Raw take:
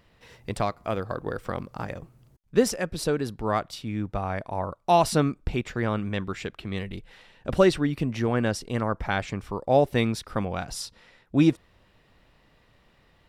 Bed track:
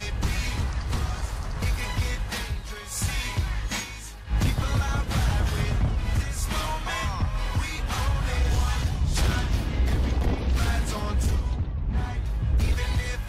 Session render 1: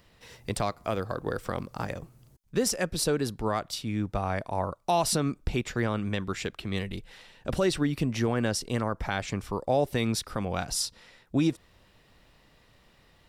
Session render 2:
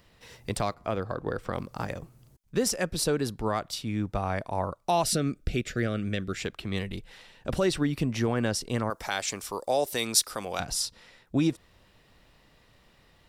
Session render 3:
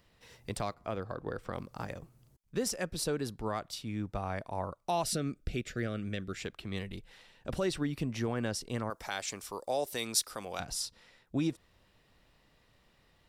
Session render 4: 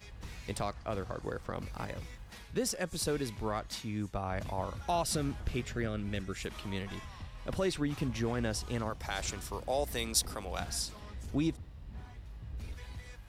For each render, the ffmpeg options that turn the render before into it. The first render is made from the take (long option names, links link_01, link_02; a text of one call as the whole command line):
ffmpeg -i in.wav -filter_complex "[0:a]acrossover=split=520|4100[link_01][link_02][link_03];[link_03]acontrast=67[link_04];[link_01][link_02][link_04]amix=inputs=3:normalize=0,alimiter=limit=-15.5dB:level=0:latency=1:release=139" out.wav
ffmpeg -i in.wav -filter_complex "[0:a]asettb=1/sr,asplit=3[link_01][link_02][link_03];[link_01]atrim=end=0.744[link_04];[link_02]atrim=start=0.74:end=1.53,asetpts=PTS-STARTPTS,afade=type=in:duration=0.004:curve=qsin,afade=type=out:start_time=0.786:duration=0.004:curve=qsin,lowpass=frequency=3100:poles=1[link_05];[link_03]atrim=start=1.526[link_06];[link_04][link_05]acrossfade=duration=0.004:curve1=hsin:curve2=qsin[link_07];[link_07][link_06]acrossfade=duration=0.004:curve1=qsin:curve2=hsin,asettb=1/sr,asplit=3[link_08][link_09][link_10];[link_08]atrim=end=5.044[link_11];[link_09]atrim=start=5.04:end=6.39,asetpts=PTS-STARTPTS,afade=type=in:duration=0.004:curve=qsin,afade=type=out:start_time=1.346:duration=0.004:curve=qsin,asuperstop=centerf=940:order=4:qfactor=1.6[link_12];[link_10]atrim=start=6.386[link_13];[link_11][link_12]acrossfade=duration=0.004:curve1=hsin:curve2=qsin[link_14];[link_14][link_13]acrossfade=duration=0.004:curve1=qsin:curve2=hsin,asettb=1/sr,asplit=3[link_15][link_16][link_17];[link_15]atrim=end=8.904[link_18];[link_16]atrim=start=8.9:end=10.6,asetpts=PTS-STARTPTS,afade=type=in:duration=0.004:curve=qsin,afade=type=out:start_time=1.696:duration=0.004:curve=qsin,bass=frequency=250:gain=-14,treble=frequency=4000:gain=13[link_19];[link_17]atrim=start=10.596[link_20];[link_18][link_19]acrossfade=duration=0.004:curve1=hsin:curve2=qsin[link_21];[link_21][link_20]acrossfade=duration=0.004:curve1=qsin:curve2=hsin" out.wav
ffmpeg -i in.wav -af "volume=-6.5dB" out.wav
ffmpeg -i in.wav -i bed.wav -filter_complex "[1:a]volume=-19.5dB[link_01];[0:a][link_01]amix=inputs=2:normalize=0" out.wav